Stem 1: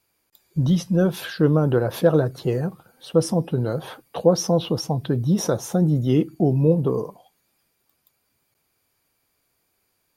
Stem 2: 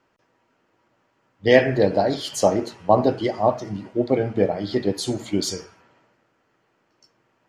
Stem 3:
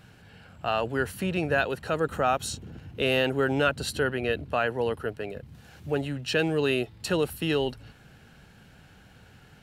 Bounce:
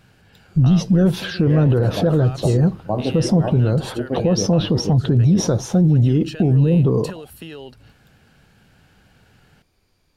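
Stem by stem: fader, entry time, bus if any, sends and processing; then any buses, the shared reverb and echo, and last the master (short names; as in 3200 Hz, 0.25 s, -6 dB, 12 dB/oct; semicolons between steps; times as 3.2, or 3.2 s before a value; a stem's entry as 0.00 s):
+1.5 dB, 0.00 s, bus A, no send, bell 4800 Hz +13 dB 2.4 oct
-10.0 dB, 0.00 s, bus A, no send, dry
-1.0 dB, 0.00 s, no bus, no send, limiter -19.5 dBFS, peak gain reduction 8.5 dB; compressor, threshold -31 dBFS, peak gain reduction 7.5 dB
bus A: 0.0 dB, tilt -4 dB/oct; limiter -8.5 dBFS, peak gain reduction 12 dB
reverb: off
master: dry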